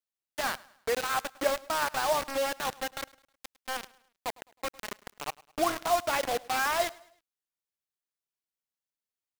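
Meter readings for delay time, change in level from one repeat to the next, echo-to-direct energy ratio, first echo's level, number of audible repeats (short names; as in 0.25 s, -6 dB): 0.105 s, -7.5 dB, -21.0 dB, -22.0 dB, 2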